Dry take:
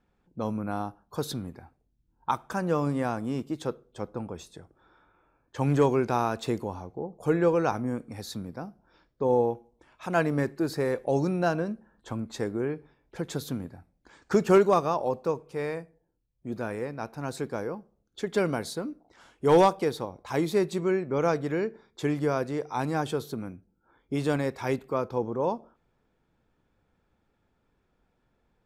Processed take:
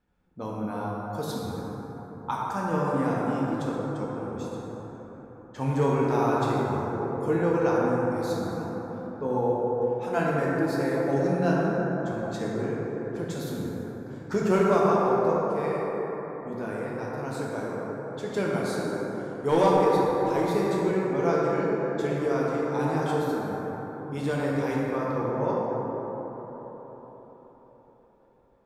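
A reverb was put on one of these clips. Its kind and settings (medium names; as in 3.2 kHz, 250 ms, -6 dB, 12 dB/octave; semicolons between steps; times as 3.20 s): plate-style reverb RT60 4.7 s, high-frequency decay 0.3×, DRR -5.5 dB; trim -5 dB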